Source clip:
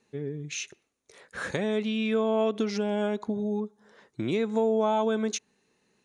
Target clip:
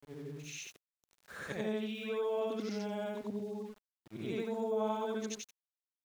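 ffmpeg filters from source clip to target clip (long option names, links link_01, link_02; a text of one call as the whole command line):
ffmpeg -i in.wav -af "afftfilt=real='re':imag='-im':win_size=8192:overlap=0.75,aeval=exprs='val(0)*gte(abs(val(0)),0.00355)':channel_layout=same,volume=-5dB" out.wav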